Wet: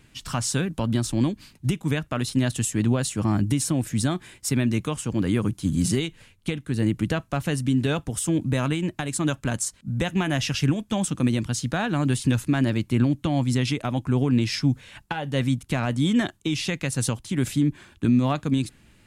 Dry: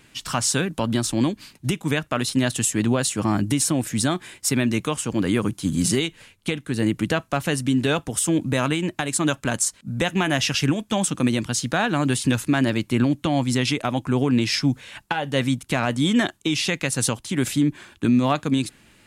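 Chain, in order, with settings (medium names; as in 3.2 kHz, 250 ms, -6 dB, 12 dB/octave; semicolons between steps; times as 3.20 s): bass shelf 170 Hz +11.5 dB; trim -5.5 dB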